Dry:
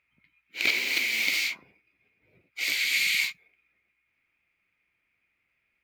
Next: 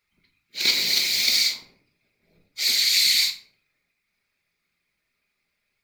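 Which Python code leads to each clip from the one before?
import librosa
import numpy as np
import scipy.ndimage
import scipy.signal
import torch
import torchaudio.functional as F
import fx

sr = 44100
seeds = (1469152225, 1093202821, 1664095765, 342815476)

y = fx.high_shelf_res(x, sr, hz=3400.0, db=7.0, q=3.0)
y = fx.whisperise(y, sr, seeds[0])
y = fx.room_shoebox(y, sr, seeds[1], volume_m3=530.0, walls='furnished', distance_m=1.3)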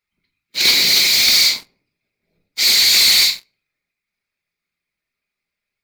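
y = fx.leveller(x, sr, passes=3)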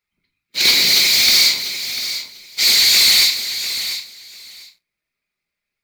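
y = fx.echo_feedback(x, sr, ms=695, feedback_pct=16, wet_db=-11.0)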